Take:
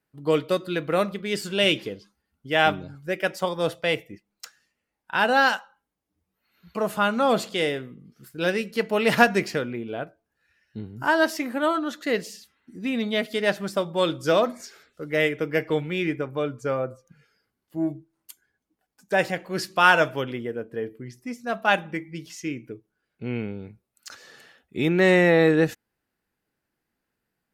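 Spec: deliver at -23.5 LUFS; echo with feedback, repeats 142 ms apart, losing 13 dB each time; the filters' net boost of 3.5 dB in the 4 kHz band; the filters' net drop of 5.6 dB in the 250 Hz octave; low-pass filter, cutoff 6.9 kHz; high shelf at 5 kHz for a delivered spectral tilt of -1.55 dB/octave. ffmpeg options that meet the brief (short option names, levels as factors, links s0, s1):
-af "lowpass=6900,equalizer=f=250:t=o:g=-8.5,equalizer=f=4000:t=o:g=7,highshelf=f=5000:g=-4.5,aecho=1:1:142|284|426:0.224|0.0493|0.0108,volume=1.12"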